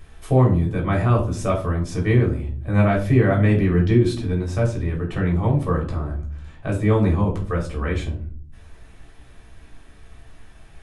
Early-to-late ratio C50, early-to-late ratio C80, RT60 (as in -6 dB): 9.0 dB, 13.5 dB, 0.45 s